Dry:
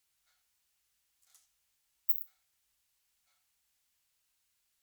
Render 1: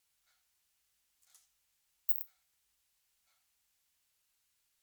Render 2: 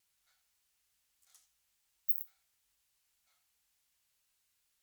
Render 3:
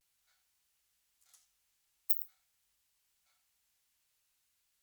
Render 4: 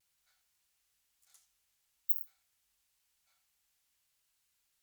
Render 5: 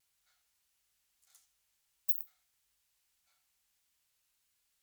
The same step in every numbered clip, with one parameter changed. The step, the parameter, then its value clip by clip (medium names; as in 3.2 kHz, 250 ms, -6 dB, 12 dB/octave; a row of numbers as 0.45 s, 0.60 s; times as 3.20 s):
vibrato, rate: 11 Hz, 3.5 Hz, 0.43 Hz, 1 Hz, 1.6 Hz